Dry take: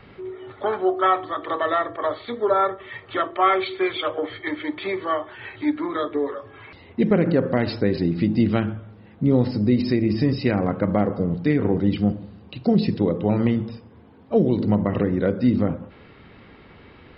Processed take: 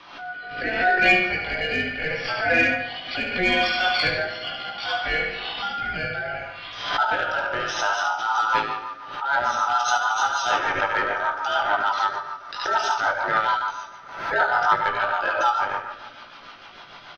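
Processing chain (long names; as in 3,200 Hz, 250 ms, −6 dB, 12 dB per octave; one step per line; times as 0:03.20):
ring modulation 1,100 Hz
in parallel at +1 dB: downward compressor, threshold −31 dBFS, peak gain reduction 15 dB
on the sum: parametric band 75 Hz −14 dB 0.35 octaves
repeating echo 72 ms, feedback 53%, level −4.5 dB
chorus effect 0.86 Hz, delay 16.5 ms, depth 3.2 ms
soft clipping −11 dBFS, distortion −23 dB
on a send at −8 dB: convolution reverb, pre-delay 3 ms
on the sum: rotating-speaker cabinet horn 0.7 Hz, later 6.7 Hz, at 0:07.81
high-shelf EQ 2,100 Hz +10 dB
background raised ahead of every attack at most 71 dB per second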